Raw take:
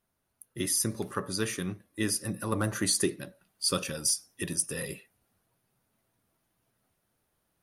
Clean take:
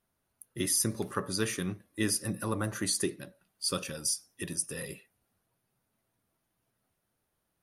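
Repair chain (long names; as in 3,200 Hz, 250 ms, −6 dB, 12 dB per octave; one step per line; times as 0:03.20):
clipped peaks rebuilt −16 dBFS
level correction −3.5 dB, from 0:02.52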